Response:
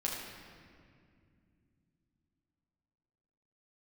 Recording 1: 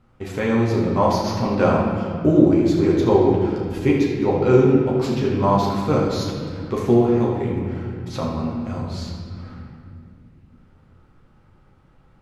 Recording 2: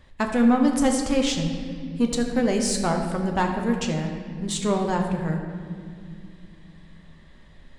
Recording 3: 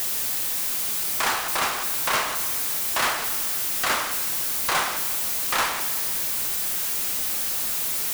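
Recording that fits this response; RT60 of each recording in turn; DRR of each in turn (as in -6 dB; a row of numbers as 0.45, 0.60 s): 1; 2.3 s, 2.3 s, not exponential; -4.5, 2.0, 7.0 dB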